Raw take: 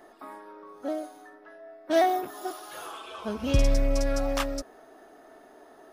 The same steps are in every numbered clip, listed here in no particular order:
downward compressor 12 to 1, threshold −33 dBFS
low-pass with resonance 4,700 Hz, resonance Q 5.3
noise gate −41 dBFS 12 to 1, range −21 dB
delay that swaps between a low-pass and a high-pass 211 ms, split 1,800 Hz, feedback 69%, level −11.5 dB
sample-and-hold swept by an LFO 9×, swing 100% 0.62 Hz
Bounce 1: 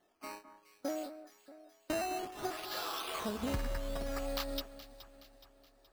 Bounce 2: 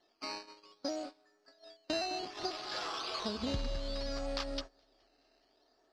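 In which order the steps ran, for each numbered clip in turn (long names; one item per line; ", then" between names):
low-pass with resonance, then downward compressor, then noise gate, then sample-and-hold swept by an LFO, then delay that swaps between a low-pass and a high-pass
sample-and-hold swept by an LFO, then low-pass with resonance, then downward compressor, then delay that swaps between a low-pass and a high-pass, then noise gate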